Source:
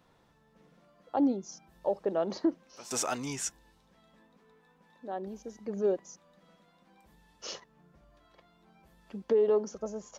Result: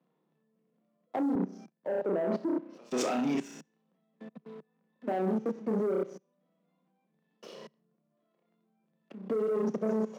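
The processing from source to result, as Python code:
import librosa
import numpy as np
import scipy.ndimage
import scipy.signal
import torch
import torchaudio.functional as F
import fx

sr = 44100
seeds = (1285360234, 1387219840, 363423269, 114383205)

y = scipy.signal.sosfilt(scipy.signal.butter(2, 2600.0, 'lowpass', fs=sr, output='sos'), x)
y = fx.notch(y, sr, hz=870.0, q=12.0)
y = fx.room_flutter(y, sr, wall_m=5.5, rt60_s=0.46)
y = fx.rider(y, sr, range_db=4, speed_s=0.5)
y = fx.peak_eq(y, sr, hz=1500.0, db=-6.5, octaves=0.77)
y = fx.level_steps(y, sr, step_db=19)
y = fx.low_shelf(y, sr, hz=450.0, db=8.0)
y = fx.leveller(y, sr, passes=2)
y = scipy.signal.sosfilt(scipy.signal.butter(12, 150.0, 'highpass', fs=sr, output='sos'), y)
y = fx.band_widen(y, sr, depth_pct=70, at=(1.35, 3.35))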